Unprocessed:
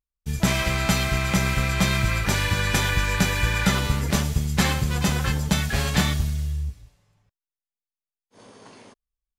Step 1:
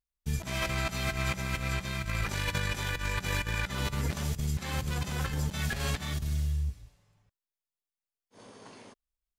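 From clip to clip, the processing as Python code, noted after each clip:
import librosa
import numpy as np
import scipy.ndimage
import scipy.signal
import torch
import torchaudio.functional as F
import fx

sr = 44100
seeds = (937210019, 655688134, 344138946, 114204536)

y = fx.over_compress(x, sr, threshold_db=-25.0, ratio=-0.5)
y = F.gain(torch.from_numpy(y), -6.0).numpy()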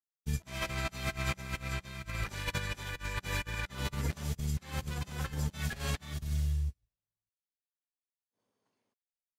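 y = fx.upward_expand(x, sr, threshold_db=-49.0, expansion=2.5)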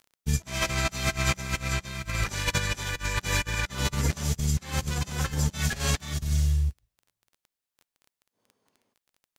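y = fx.dynamic_eq(x, sr, hz=6400.0, q=1.4, threshold_db=-59.0, ratio=4.0, max_db=7)
y = fx.dmg_crackle(y, sr, seeds[0], per_s=18.0, level_db=-48.0)
y = F.gain(torch.from_numpy(y), 7.5).numpy()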